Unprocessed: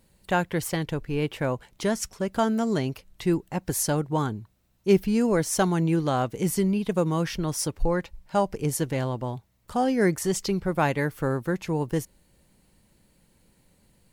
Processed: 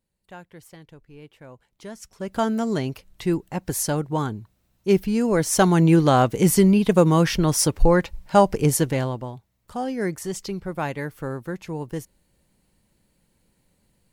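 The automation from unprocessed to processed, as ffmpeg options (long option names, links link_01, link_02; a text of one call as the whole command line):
ffmpeg -i in.wav -af "volume=8dB,afade=type=in:start_time=1.45:duration=0.62:silence=0.446684,afade=type=in:start_time=2.07:duration=0.34:silence=0.251189,afade=type=in:start_time=5.25:duration=0.65:silence=0.446684,afade=type=out:start_time=8.61:duration=0.71:silence=0.251189" out.wav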